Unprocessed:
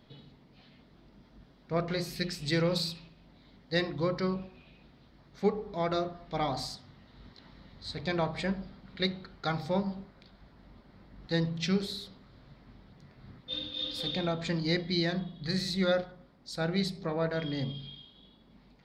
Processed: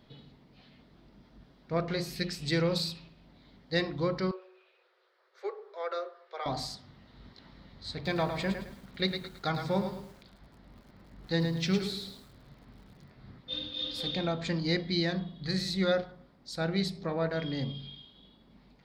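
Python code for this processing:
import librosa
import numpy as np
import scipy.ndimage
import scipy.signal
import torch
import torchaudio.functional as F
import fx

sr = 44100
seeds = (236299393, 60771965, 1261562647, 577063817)

y = fx.cheby_ripple_highpass(x, sr, hz=360.0, ripple_db=9, at=(4.31, 6.46))
y = fx.echo_crushed(y, sr, ms=108, feedback_pct=35, bits=9, wet_db=-6.5, at=(7.94, 13.11))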